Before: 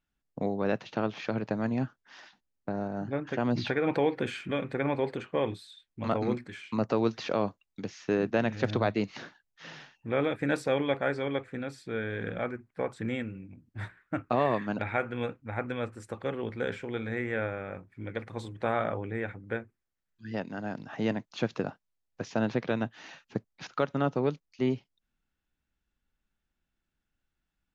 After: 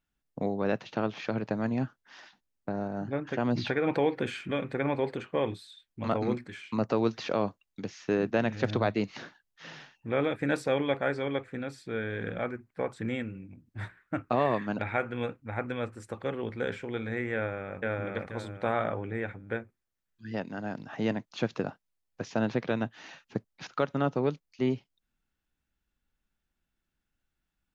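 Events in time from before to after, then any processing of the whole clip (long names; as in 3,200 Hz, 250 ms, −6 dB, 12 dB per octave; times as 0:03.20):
0:17.34–0:17.78: delay throw 480 ms, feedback 30%, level 0 dB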